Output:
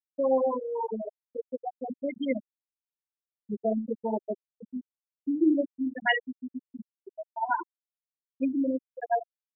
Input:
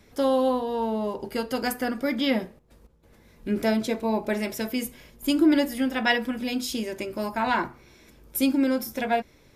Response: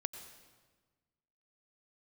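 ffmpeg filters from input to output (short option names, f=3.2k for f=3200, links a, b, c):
-filter_complex "[0:a]highpass=f=360:p=1,asplit=2[a][b];[b]adelay=68,lowpass=f=1.1k:p=1,volume=-8.5dB,asplit=2[c][d];[d]adelay=68,lowpass=f=1.1k:p=1,volume=0.4,asplit=2[e][f];[f]adelay=68,lowpass=f=1.1k:p=1,volume=0.4,asplit=2[g][h];[h]adelay=68,lowpass=f=1.1k:p=1,volume=0.4[i];[c][e][g][i]amix=inputs=4:normalize=0[j];[a][j]amix=inputs=2:normalize=0,afftfilt=real='re*gte(hypot(re,im),0.282)':imag='im*gte(hypot(re,im),0.282)':win_size=1024:overlap=0.75"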